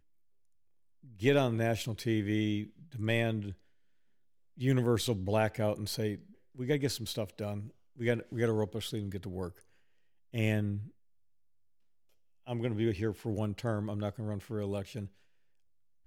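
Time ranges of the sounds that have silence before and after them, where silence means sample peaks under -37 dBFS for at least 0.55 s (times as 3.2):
1.22–3.52
4.61–9.48
10.34–10.82
12.48–15.06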